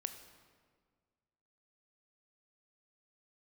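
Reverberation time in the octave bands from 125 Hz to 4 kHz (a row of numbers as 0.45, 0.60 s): 2.1, 1.9, 1.8, 1.6, 1.4, 1.1 s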